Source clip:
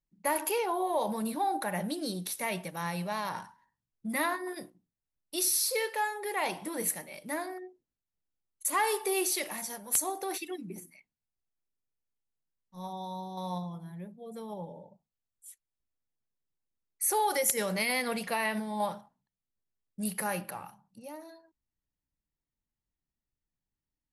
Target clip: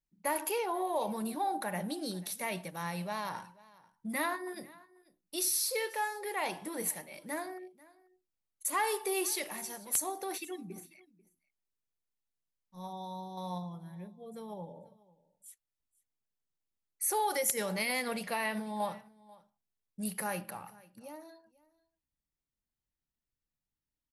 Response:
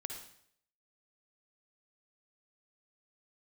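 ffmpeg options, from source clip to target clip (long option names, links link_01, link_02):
-af "aecho=1:1:490:0.075,volume=-3dB"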